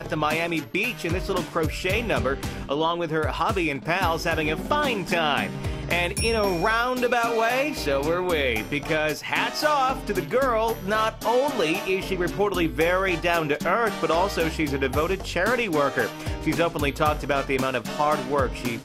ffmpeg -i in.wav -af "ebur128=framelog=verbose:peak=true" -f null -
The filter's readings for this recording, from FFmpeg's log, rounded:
Integrated loudness:
  I:         -24.0 LUFS
  Threshold: -34.0 LUFS
Loudness range:
  LRA:         1.6 LU
  Threshold: -43.9 LUFS
  LRA low:   -24.9 LUFS
  LRA high:  -23.3 LUFS
True peak:
  Peak:       -7.5 dBFS